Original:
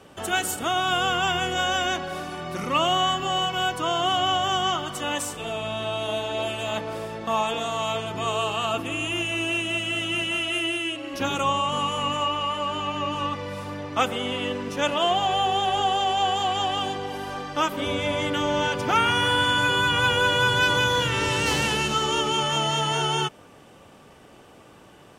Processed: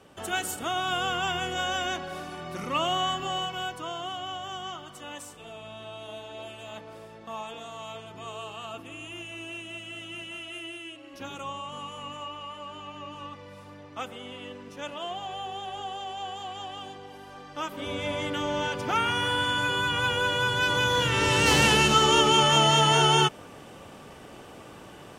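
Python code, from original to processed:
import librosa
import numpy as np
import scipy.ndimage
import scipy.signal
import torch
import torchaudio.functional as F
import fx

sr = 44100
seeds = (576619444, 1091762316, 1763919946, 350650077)

y = fx.gain(x, sr, db=fx.line((3.26, -5.0), (4.19, -13.0), (17.31, -13.0), (18.05, -5.0), (20.57, -5.0), (21.65, 4.0)))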